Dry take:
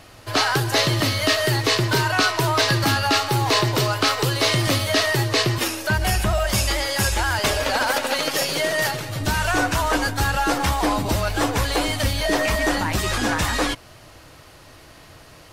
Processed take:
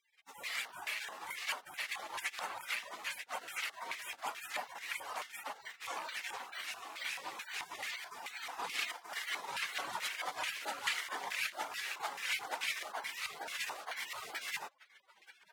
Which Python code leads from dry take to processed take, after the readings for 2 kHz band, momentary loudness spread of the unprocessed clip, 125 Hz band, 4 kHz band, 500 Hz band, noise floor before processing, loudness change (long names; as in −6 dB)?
−16.0 dB, 4 LU, below −40 dB, −19.0 dB, −27.5 dB, −47 dBFS, −19.0 dB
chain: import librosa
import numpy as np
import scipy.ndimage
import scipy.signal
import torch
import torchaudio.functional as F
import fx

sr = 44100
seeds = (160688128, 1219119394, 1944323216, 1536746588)

p1 = fx.rattle_buzz(x, sr, strikes_db=-24.0, level_db=-19.0)
p2 = fx.dereverb_blind(p1, sr, rt60_s=2.0)
p3 = fx.echo_feedback(p2, sr, ms=933, feedback_pct=17, wet_db=-7)
p4 = fx.dereverb_blind(p3, sr, rt60_s=1.3)
p5 = fx.peak_eq(p4, sr, hz=1200.0, db=3.0, octaves=1.1)
p6 = 10.0 ** (-18.5 / 20.0) * np.tanh(p5 / 10.0 ** (-18.5 / 20.0))
p7 = p5 + (p6 * 10.0 ** (-6.5 / 20.0))
p8 = fx.dmg_noise_colour(p7, sr, seeds[0], colour='white', level_db=-51.0)
p9 = fx.high_shelf(p8, sr, hz=4500.0, db=12.0)
p10 = fx.rider(p9, sr, range_db=10, speed_s=0.5)
p11 = fx.spec_gate(p10, sr, threshold_db=-30, keep='weak')
p12 = fx.filter_lfo_bandpass(p11, sr, shape='square', hz=2.3, low_hz=890.0, high_hz=2100.0, q=2.3)
y = p12 * 10.0 ** (10.0 / 20.0)